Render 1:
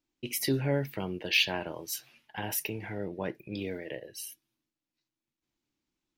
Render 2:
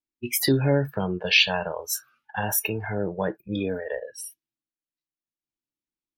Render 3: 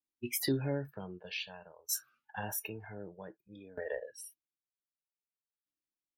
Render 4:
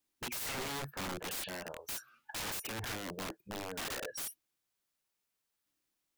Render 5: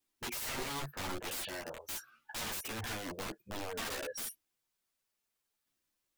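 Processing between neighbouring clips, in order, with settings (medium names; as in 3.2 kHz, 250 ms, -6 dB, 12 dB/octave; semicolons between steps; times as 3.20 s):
spectral noise reduction 24 dB; in parallel at -2 dB: compression, threshold -35 dBFS, peak gain reduction 13.5 dB; on the sum: trim +5.5 dB
peaking EQ 300 Hz +2 dB; sawtooth tremolo in dB decaying 0.53 Hz, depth 22 dB; trim -5.5 dB
compression 2.5:1, threshold -43 dBFS, peak gain reduction 11 dB; integer overflow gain 45 dB; trim +11 dB
chorus voices 6, 0.55 Hz, delay 11 ms, depth 3.1 ms; trim +3 dB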